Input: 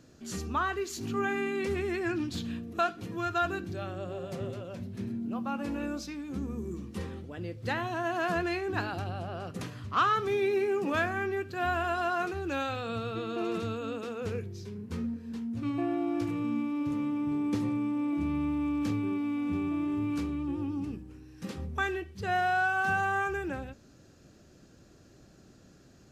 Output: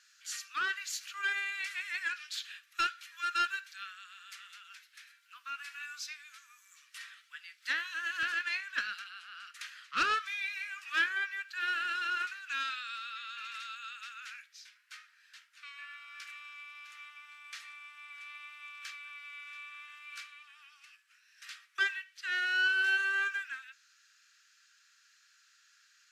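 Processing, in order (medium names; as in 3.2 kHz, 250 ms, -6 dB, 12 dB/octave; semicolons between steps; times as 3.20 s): steep high-pass 1.4 kHz 48 dB/octave; treble shelf 7.7 kHz -3.5 dB, from 8.23 s -9 dB; loudspeaker Doppler distortion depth 0.26 ms; trim +4 dB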